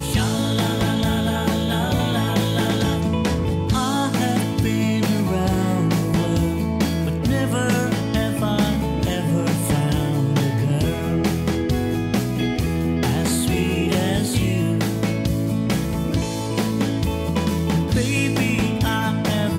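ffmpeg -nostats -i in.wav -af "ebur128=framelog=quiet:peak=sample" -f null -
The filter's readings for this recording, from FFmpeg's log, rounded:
Integrated loudness:
  I:         -20.9 LUFS
  Threshold: -30.9 LUFS
Loudness range:
  LRA:         1.1 LU
  Threshold: -41.0 LUFS
  LRA low:   -21.6 LUFS
  LRA high:  -20.5 LUFS
Sample peak:
  Peak:       -8.0 dBFS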